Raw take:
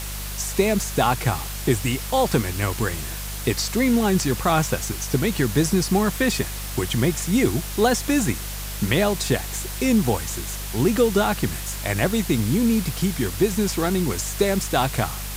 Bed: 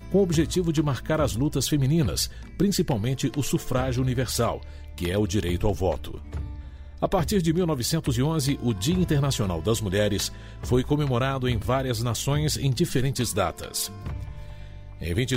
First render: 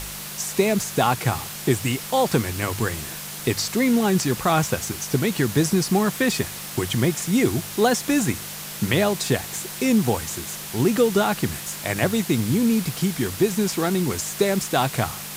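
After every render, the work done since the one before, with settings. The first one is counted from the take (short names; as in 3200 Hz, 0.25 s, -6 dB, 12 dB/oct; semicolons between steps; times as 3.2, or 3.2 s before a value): de-hum 50 Hz, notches 2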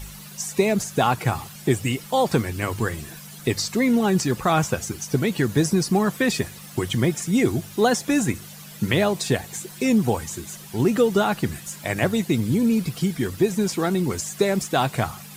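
denoiser 12 dB, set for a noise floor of -35 dBFS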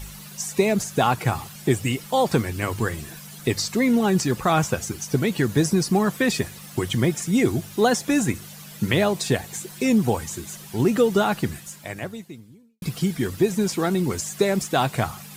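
11.4–12.82 fade out quadratic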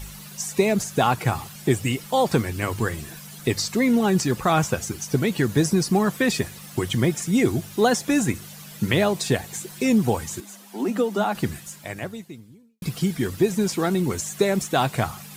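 10.4–11.35 rippled Chebyshev high-pass 190 Hz, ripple 6 dB; 13.98–14.76 notch 4900 Hz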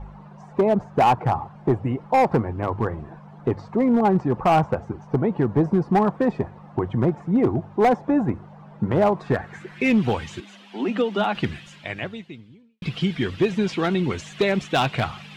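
low-pass sweep 890 Hz -> 3000 Hz, 9.01–10.05; hard clip -12.5 dBFS, distortion -16 dB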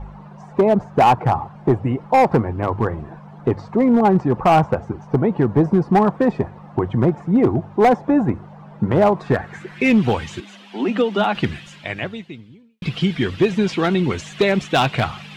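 gain +4 dB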